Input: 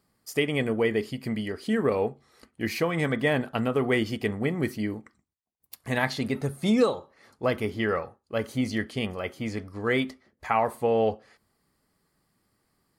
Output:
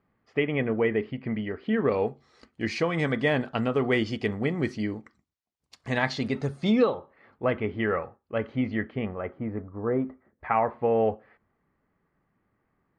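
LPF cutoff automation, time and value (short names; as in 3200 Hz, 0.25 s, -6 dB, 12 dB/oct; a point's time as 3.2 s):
LPF 24 dB/oct
1.63 s 2600 Hz
2.08 s 6500 Hz
6.56 s 6500 Hz
6.97 s 2700 Hz
8.62 s 2700 Hz
9.94 s 1100 Hz
10.47 s 2300 Hz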